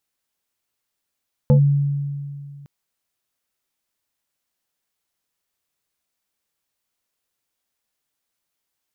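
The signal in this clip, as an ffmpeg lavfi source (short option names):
-f lavfi -i "aevalsrc='0.376*pow(10,-3*t/2.31)*sin(2*PI*142*t+0.81*clip(1-t/0.1,0,1)*sin(2*PI*2.53*142*t))':d=1.16:s=44100"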